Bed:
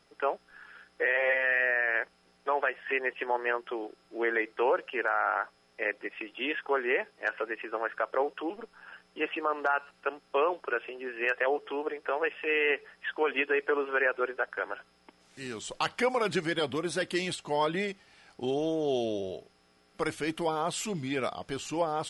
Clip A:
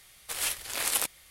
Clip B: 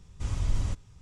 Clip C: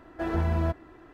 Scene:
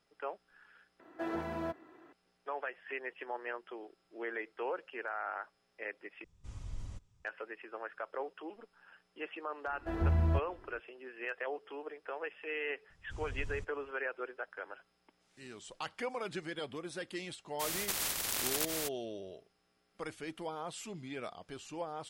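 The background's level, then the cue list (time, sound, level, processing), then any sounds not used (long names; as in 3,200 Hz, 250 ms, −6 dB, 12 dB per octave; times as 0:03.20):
bed −11 dB
0:01.00: overwrite with C −6 dB + high-pass filter 240 Hz
0:06.24: overwrite with B −15.5 dB
0:09.67: mix in C −8.5 dB + low-shelf EQ 120 Hz +10 dB
0:12.90: mix in B −14.5 dB
0:17.59: mix in A −7 dB, fades 0.02 s + every bin compressed towards the loudest bin 10 to 1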